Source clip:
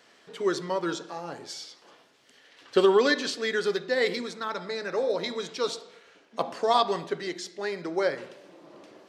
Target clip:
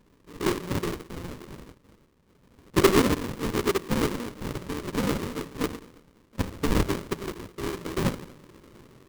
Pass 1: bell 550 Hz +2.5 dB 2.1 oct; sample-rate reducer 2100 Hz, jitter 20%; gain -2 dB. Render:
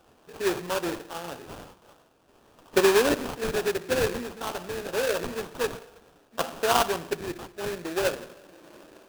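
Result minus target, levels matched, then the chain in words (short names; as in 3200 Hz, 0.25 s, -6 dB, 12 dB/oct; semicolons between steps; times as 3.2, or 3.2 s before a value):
sample-rate reducer: distortion -24 dB
bell 550 Hz +2.5 dB 2.1 oct; sample-rate reducer 740 Hz, jitter 20%; gain -2 dB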